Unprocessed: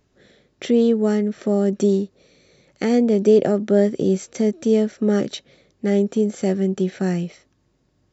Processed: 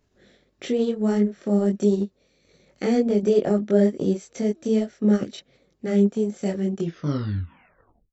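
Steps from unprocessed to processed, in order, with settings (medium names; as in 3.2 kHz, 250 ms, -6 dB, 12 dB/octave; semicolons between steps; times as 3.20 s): tape stop on the ending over 1.36 s; chorus voices 6, 1.5 Hz, delay 22 ms, depth 3 ms; transient shaper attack -1 dB, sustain -6 dB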